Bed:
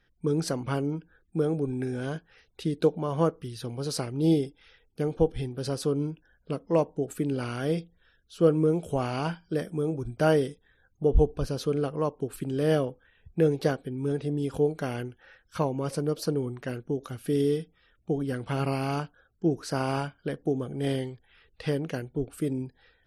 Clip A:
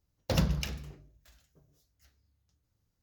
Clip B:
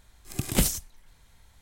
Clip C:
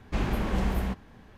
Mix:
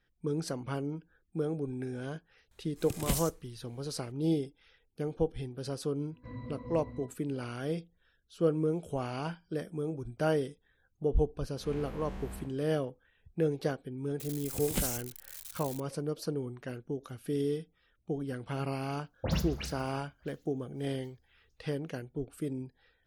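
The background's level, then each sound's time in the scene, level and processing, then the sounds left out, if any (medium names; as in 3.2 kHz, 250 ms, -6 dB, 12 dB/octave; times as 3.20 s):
bed -6.5 dB
2.51 s: add B -8.5 dB
6.11 s: add C -1 dB + pitch-class resonator B, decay 0.19 s
11.53 s: add C -13.5 dB + spectral blur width 116 ms
14.19 s: add B -10 dB + zero-crossing glitches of -25.5 dBFS
18.94 s: add A -3.5 dB + phase dispersion highs, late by 86 ms, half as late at 2.8 kHz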